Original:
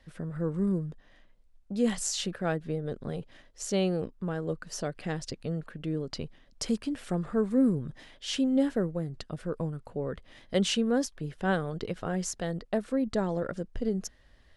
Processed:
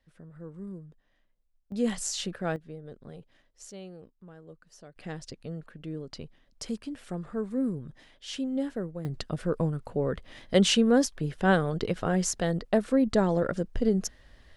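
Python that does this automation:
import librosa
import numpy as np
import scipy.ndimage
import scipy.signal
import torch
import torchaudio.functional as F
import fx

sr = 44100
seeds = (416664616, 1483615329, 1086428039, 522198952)

y = fx.gain(x, sr, db=fx.steps((0.0, -12.5), (1.72, -1.0), (2.56, -10.0), (3.71, -16.5), (4.96, -5.0), (9.05, 5.0)))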